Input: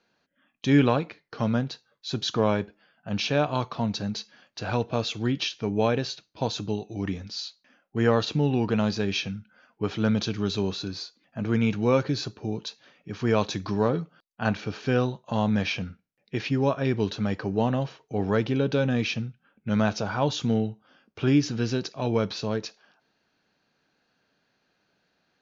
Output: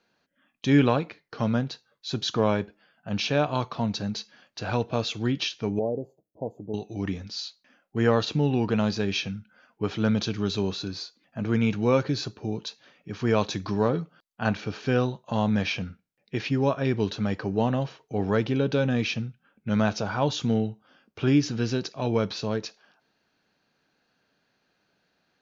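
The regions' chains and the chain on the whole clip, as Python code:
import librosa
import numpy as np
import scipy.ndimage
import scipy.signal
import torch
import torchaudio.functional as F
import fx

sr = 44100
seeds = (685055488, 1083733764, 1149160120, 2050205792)

y = fx.chain(x, sr, fx.cheby2_bandstop(low_hz=1400.0, high_hz=5900.0, order=4, stop_db=50),
    fx.low_shelf(hz=250.0, db=-11.0), at=(5.79, 6.74))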